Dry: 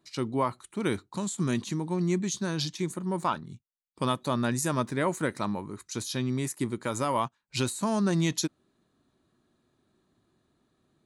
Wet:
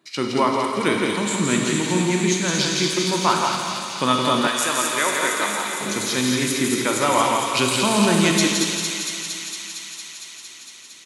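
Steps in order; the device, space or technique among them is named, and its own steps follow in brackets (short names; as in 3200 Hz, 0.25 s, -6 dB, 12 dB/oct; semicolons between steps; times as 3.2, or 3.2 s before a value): PA in a hall (HPF 150 Hz 12 dB/oct; bell 2300 Hz +6 dB 1.3 oct; echo 0.167 s -4 dB; reverb RT60 2.4 s, pre-delay 24 ms, DRR 2 dB); 4.47–5.81 HPF 870 Hz 6 dB/oct; low shelf 65 Hz -11 dB; thin delay 0.229 s, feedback 80%, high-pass 2800 Hz, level -3 dB; gain +6.5 dB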